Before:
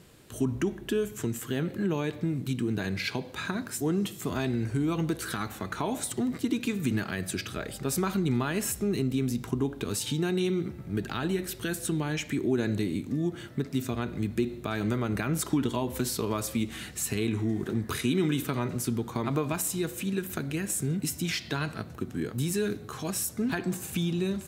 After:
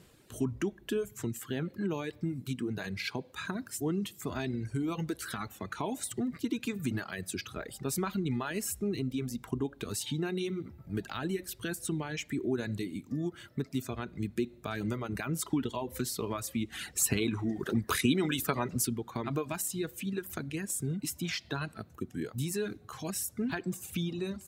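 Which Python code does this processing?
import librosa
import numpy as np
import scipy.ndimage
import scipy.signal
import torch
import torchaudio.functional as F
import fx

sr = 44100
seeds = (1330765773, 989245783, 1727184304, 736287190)

y = fx.dereverb_blind(x, sr, rt60_s=1.2)
y = fx.hpss(y, sr, part='percussive', gain_db=8, at=(16.72, 18.87))
y = y * librosa.db_to_amplitude(-3.5)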